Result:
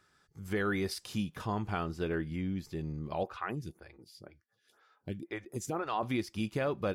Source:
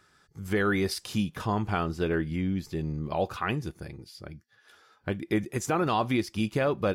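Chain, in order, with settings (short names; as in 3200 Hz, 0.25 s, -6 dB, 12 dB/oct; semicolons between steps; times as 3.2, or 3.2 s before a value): 3.23–6.03 photocell phaser 2 Hz; gain -6 dB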